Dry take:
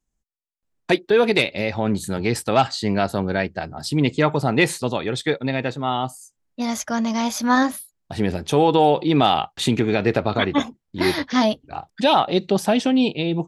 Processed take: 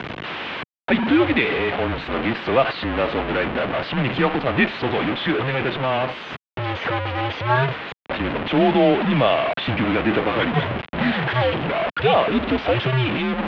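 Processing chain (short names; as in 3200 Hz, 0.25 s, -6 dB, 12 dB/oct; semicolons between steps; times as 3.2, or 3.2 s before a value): delta modulation 64 kbps, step -14.5 dBFS; mistuned SSB -130 Hz 270–3300 Hz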